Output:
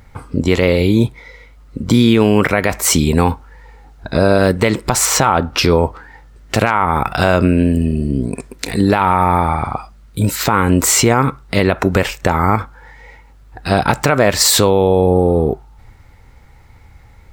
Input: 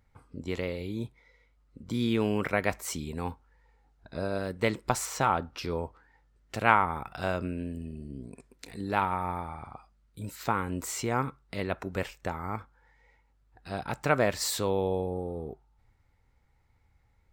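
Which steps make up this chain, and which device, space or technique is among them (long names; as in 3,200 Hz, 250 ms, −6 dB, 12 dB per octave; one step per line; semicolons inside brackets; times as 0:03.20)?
loud club master (downward compressor 2.5 to 1, threshold −31 dBFS, peak gain reduction 11 dB; hard clipping −16 dBFS, distortion −39 dB; boost into a limiter +24.5 dB)
level −1 dB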